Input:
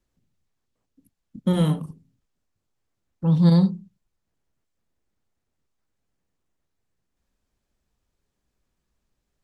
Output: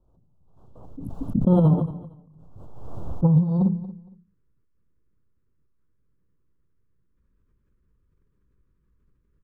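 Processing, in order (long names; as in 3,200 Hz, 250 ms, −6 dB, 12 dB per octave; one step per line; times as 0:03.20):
drawn EQ curve 150 Hz 0 dB, 240 Hz −6 dB, 610 Hz −1 dB, 950 Hz −3 dB, 4,900 Hz −29 dB
compressor whose output falls as the input rises −22 dBFS, ratio −0.5
Butterworth band-reject 2,000 Hz, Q 1, from 0:03.68 720 Hz
repeating echo 231 ms, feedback 21%, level −16 dB
background raised ahead of every attack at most 39 dB per second
level +5 dB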